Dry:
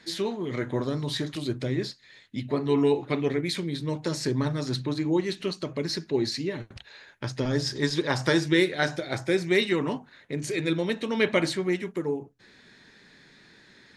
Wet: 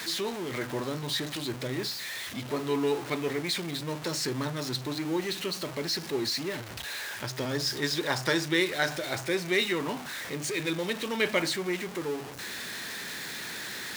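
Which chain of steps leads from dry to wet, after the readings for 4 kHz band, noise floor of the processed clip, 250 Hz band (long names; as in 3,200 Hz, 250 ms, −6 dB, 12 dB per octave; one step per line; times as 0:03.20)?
+1.5 dB, −40 dBFS, −5.5 dB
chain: converter with a step at zero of −30 dBFS
high-pass filter 53 Hz
low-shelf EQ 460 Hz −8.5 dB
level −1.5 dB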